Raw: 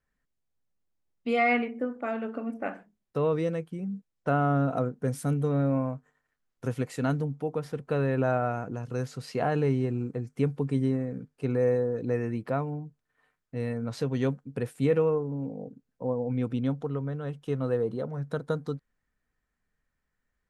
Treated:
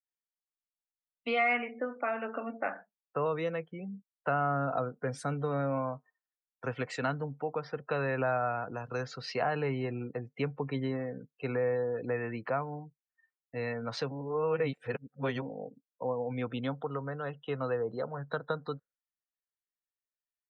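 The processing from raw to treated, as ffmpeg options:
ffmpeg -i in.wav -filter_complex "[0:a]asettb=1/sr,asplit=3[link_01][link_02][link_03];[link_01]atrim=end=2.534[link_04];[link_02]atrim=start=2.53:end=3.26,asetpts=PTS-STARTPTS,afade=type=in:duration=0.004:curve=qsin,afade=type=out:start_time=0.726:duration=0.004:curve=qsin,lowpass=frequency=2600:width=0.5412,lowpass=frequency=2600:width=1.3066[link_05];[link_03]atrim=start=3.256[link_06];[link_04][link_05]acrossfade=duration=0.004:curve1=hsin:curve2=qsin[link_07];[link_07][link_06]acrossfade=duration=0.004:curve1=qsin:curve2=hsin,asplit=3[link_08][link_09][link_10];[link_08]atrim=end=14.112[link_11];[link_09]atrim=start=14.108:end=15.422,asetpts=PTS-STARTPTS,areverse[link_12];[link_10]atrim=start=15.418[link_13];[link_11][link_12]acrossfade=duration=0.004:curve1=hsin:curve2=hsin[link_14];[link_14][link_13]acrossfade=duration=0.004:curve1=hsin:curve2=hsin,acrossover=split=590 6300:gain=0.178 1 0.126[link_15][link_16][link_17];[link_15][link_16][link_17]amix=inputs=3:normalize=0,acrossover=split=200[link_18][link_19];[link_19]acompressor=threshold=-39dB:ratio=2[link_20];[link_18][link_20]amix=inputs=2:normalize=0,afftdn=noise_reduction=30:noise_floor=-55,volume=7dB" out.wav

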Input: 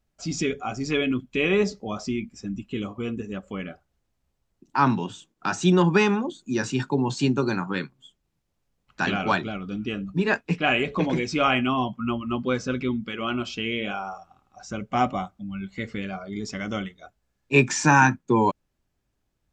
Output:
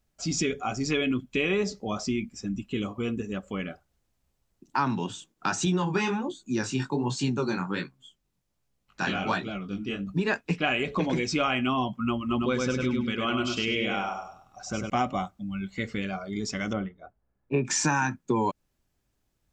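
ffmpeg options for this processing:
ffmpeg -i in.wav -filter_complex "[0:a]asettb=1/sr,asplit=3[link_01][link_02][link_03];[link_01]atrim=end=5.654[link_04];[link_02]atrim=start=5.65:end=10.07,asetpts=PTS-STARTPTS,afade=type=in:duration=0.004:curve=qsin,afade=type=out:start_time=4.416:duration=0.004:curve=qsin,flanger=delay=15:depth=7.6:speed=1.3[link_05];[link_03]atrim=start=10.066[link_06];[link_04][link_05]acrossfade=duration=0.004:curve1=hsin:curve2=qsin[link_07];[link_07][link_06]acrossfade=duration=0.004:curve1=qsin:curve2=hsin,asettb=1/sr,asplit=3[link_08][link_09][link_10];[link_08]atrim=end=12.194[link_11];[link_09]atrim=start=12.19:end=14.9,asetpts=PTS-STARTPTS,afade=type=in:duration=0.004:curve=qsin,afade=type=out:start_time=2.706:duration=0.004:curve=qsin,aecho=1:1:101|202|303|404:0.631|0.17|0.046|0.0124,atrim=end_sample=119511[link_12];[link_10]atrim=start=14.896[link_13];[link_11][link_12]acrossfade=duration=0.004:curve1=hsin:curve2=qsin[link_14];[link_14][link_13]acrossfade=duration=0.004:curve1=qsin:curve2=hsin,asettb=1/sr,asplit=3[link_15][link_16][link_17];[link_15]atrim=end=16.734[link_18];[link_16]atrim=start=16.73:end=17.65,asetpts=PTS-STARTPTS,afade=type=in:duration=0.004:curve=qsin,afade=type=out:start_time=0.916:duration=0.004:curve=qsin,lowpass=1200[link_19];[link_17]atrim=start=17.646[link_20];[link_18][link_19]acrossfade=duration=0.004:curve1=hsin:curve2=qsin[link_21];[link_21][link_20]acrossfade=duration=0.004:curve1=qsin:curve2=hsin,highshelf=frequency=5100:gain=5.5,acompressor=threshold=-22dB:ratio=6" out.wav

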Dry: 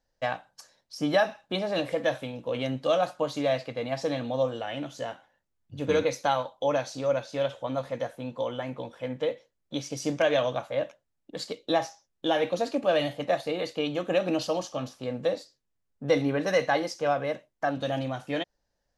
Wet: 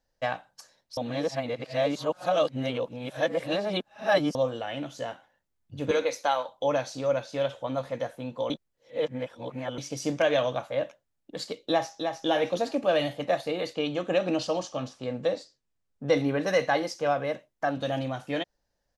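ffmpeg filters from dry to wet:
ffmpeg -i in.wav -filter_complex "[0:a]asettb=1/sr,asplit=3[link_01][link_02][link_03];[link_01]atrim=end=5.914[link_04];[link_02]atrim=start=5.91:end=6.49,asetpts=PTS-STARTPTS,afade=type=in:duration=0.004:curve=qsin,afade=type=out:start_time=0.576:duration=0.004:curve=qsin,highpass=370[link_05];[link_03]atrim=start=6.486[link_06];[link_04][link_05]acrossfade=duration=0.004:curve1=hsin:curve2=qsin[link_07];[link_07][link_06]acrossfade=duration=0.004:curve1=qsin:curve2=hsin,asplit=2[link_08][link_09];[link_09]afade=type=in:start_time=11.65:duration=0.01,afade=type=out:start_time=12.26:duration=0.01,aecho=0:1:310|620|930|1240:0.530884|0.159265|0.0477796|0.0143339[link_10];[link_08][link_10]amix=inputs=2:normalize=0,asettb=1/sr,asplit=3[link_11][link_12][link_13];[link_11]atrim=end=13.744[link_14];[link_12]atrim=start=13.74:end=16.17,asetpts=PTS-STARTPTS,afade=type=in:duration=0.004:curve=qsin,afade=type=out:start_time=2.426:duration=0.004:curve=qsin,lowpass=frequency=9100:width=0.5412,lowpass=frequency=9100:width=1.3066[link_15];[link_13]atrim=start=16.166[link_16];[link_14][link_15]acrossfade=duration=0.004:curve1=hsin:curve2=qsin[link_17];[link_17][link_16]acrossfade=duration=0.004:curve1=qsin:curve2=hsin,asplit=5[link_18][link_19][link_20][link_21][link_22];[link_18]atrim=end=0.972[link_23];[link_19]atrim=start=0.968:end=4.352,asetpts=PTS-STARTPTS,areverse[link_24];[link_20]atrim=start=4.348:end=8.502[link_25];[link_21]atrim=start=8.498:end=9.782,asetpts=PTS-STARTPTS,areverse[link_26];[link_22]atrim=start=9.778[link_27];[link_23][link_24]acrossfade=duration=0.004:curve1=hsin:curve2=hsin[link_28];[link_28][link_25]acrossfade=duration=0.004:curve1=hsin:curve2=hsin[link_29];[link_29][link_26]acrossfade=duration=0.004:curve1=hsin:curve2=hsin[link_30];[link_30][link_27]acrossfade=duration=0.004:curve1=hsin:curve2=hsin" out.wav

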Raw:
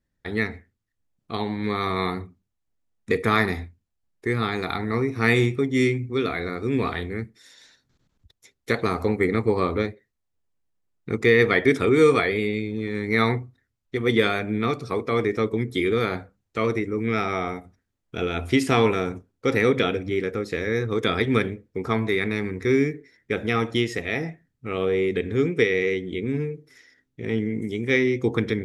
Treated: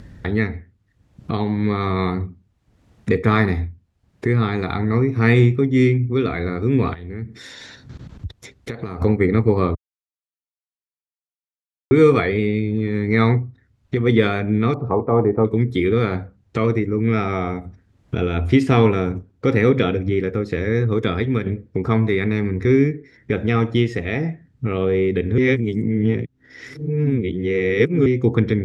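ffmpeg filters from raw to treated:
ffmpeg -i in.wav -filter_complex "[0:a]asettb=1/sr,asplit=3[link_01][link_02][link_03];[link_01]atrim=end=6.944[link_04];[link_02]atrim=start=6.94:end=9.02,asetpts=PTS-STARTPTS,afade=type=in:duration=0.004:curve=qsin,afade=type=out:start_time=2.076:duration=0.004:curve=qsin,acompressor=threshold=-45dB:ratio=3:attack=3.2:release=140:knee=1:detection=peak[link_05];[link_03]atrim=start=9.016[link_06];[link_04][link_05]acrossfade=duration=0.004:curve1=hsin:curve2=qsin[link_07];[link_07][link_06]acrossfade=duration=0.004:curve1=qsin:curve2=hsin,asettb=1/sr,asplit=3[link_08][link_09][link_10];[link_08]atrim=end=14.744[link_11];[link_09]atrim=start=14.74:end=15.45,asetpts=PTS-STARTPTS,afade=type=in:duration=0.004:curve=qsin,afade=type=out:start_time=0.706:duration=0.004:curve=qsin,lowpass=frequency=860:width_type=q:width=3.8[link_12];[link_10]atrim=start=15.446[link_13];[link_11][link_12]acrossfade=duration=0.004:curve1=hsin:curve2=qsin[link_14];[link_14][link_13]acrossfade=duration=0.004:curve1=qsin:curve2=hsin,asplit=6[link_15][link_16][link_17][link_18][link_19][link_20];[link_15]atrim=end=9.75,asetpts=PTS-STARTPTS,afade=type=out:start_time=9.746:duration=0.004:curve=hsin[link_21];[link_16]atrim=start=9.75:end=11.91,asetpts=PTS-STARTPTS,volume=0[link_22];[link_17]atrim=start=11.91:end=21.46,asetpts=PTS-STARTPTS,afade=type=in:duration=0.004:curve=hsin,afade=type=out:start_time=9.01:duration=0.54:silence=0.398107[link_23];[link_18]atrim=start=21.46:end=25.382,asetpts=PTS-STARTPTS,afade=type=in:duration=0.004:curve=hsin:silence=0.398107[link_24];[link_19]atrim=start=25.378:end=28.062,asetpts=PTS-STARTPTS,areverse[link_25];[link_20]atrim=start=28.058[link_26];[link_21][link_22][link_23][link_24]concat=n=4:v=0:a=1[link_27];[link_27][link_25]acrossfade=duration=0.004:curve1=hsin:curve2=hsin[link_28];[link_28][link_26]acrossfade=duration=0.004:curve1=hsin:curve2=hsin,acompressor=mode=upward:threshold=-23dB:ratio=2.5,highpass=76,aemphasis=mode=reproduction:type=bsi,volume=1.5dB" out.wav

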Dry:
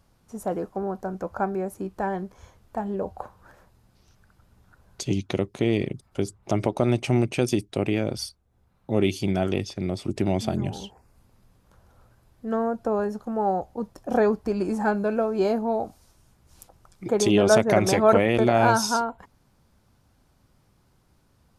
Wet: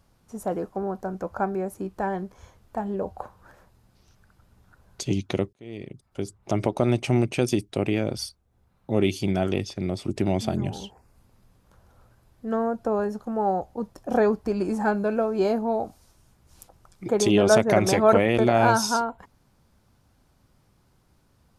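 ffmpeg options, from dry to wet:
ffmpeg -i in.wav -filter_complex "[0:a]asplit=2[link_01][link_02];[link_01]atrim=end=5.53,asetpts=PTS-STARTPTS,afade=type=out:start_time=5.526:duration=0.004:curve=hsin[link_03];[link_02]atrim=start=5.53,asetpts=PTS-STARTPTS,afade=type=in:duration=1.1[link_04];[link_03][link_04]concat=n=2:v=0:a=1" out.wav

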